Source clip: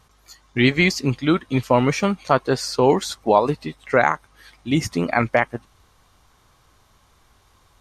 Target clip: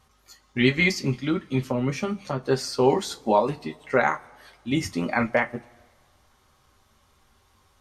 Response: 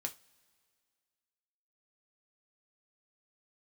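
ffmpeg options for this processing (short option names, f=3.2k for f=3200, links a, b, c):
-filter_complex "[0:a]asettb=1/sr,asplit=3[a][b][c];[a]atrim=end=1.044[d];[b]atrim=start=1.04:end=2.43,asetpts=PTS-STARTPTS,afade=t=in:d=0.004:c=qsin,afade=t=out:st=1.386:d=0.004:c=qsin,acrossover=split=310[e][f];[f]acompressor=threshold=-24dB:ratio=6[g];[e][g]amix=inputs=2:normalize=0[h];[c]atrim=start=2.426[i];[d][h]acrossfade=d=0.004:c1=hsin:c2=qsin[j];[j][i]acrossfade=d=0.004:c1=qsin:c2=hsin[k];[1:a]atrim=start_sample=2205,asetrate=61740,aresample=44100[l];[k][l]afir=irnorm=-1:irlink=0"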